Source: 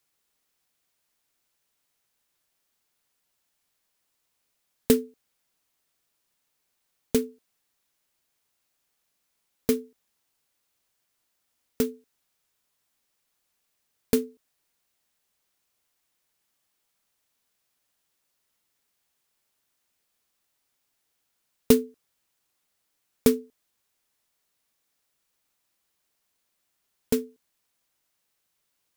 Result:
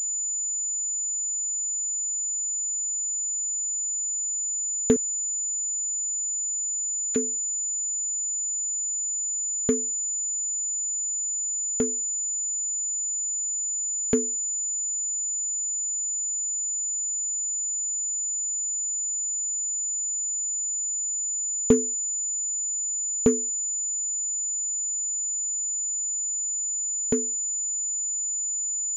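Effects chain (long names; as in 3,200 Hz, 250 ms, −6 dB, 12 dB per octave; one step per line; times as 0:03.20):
0:04.96–0:07.16: Chebyshev high-pass with heavy ripple 1,100 Hz, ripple 6 dB
treble cut that deepens with the level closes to 1,700 Hz, closed at −26.5 dBFS
switching amplifier with a slow clock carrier 7,000 Hz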